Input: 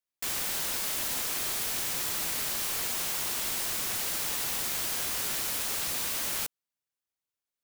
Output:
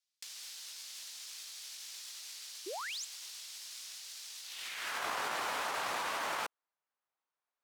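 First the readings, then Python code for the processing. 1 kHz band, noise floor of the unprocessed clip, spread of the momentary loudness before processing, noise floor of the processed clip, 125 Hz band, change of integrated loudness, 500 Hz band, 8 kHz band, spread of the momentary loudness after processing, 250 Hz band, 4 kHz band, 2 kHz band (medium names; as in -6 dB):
+1.5 dB, under -85 dBFS, 0 LU, under -85 dBFS, -17.5 dB, -11.0 dB, -2.5 dB, -13.0 dB, 9 LU, -10.5 dB, -8.0 dB, -3.5 dB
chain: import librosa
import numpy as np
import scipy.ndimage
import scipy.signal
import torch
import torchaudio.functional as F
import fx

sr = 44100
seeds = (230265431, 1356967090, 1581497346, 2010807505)

y = fx.filter_sweep_bandpass(x, sr, from_hz=4800.0, to_hz=970.0, start_s=4.42, end_s=5.07, q=1.4)
y = fx.over_compress(y, sr, threshold_db=-45.0, ratio=-0.5)
y = fx.spec_paint(y, sr, seeds[0], shape='rise', start_s=2.66, length_s=0.39, low_hz=330.0, high_hz=8000.0, level_db=-45.0)
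y = F.gain(torch.from_numpy(y), 4.0).numpy()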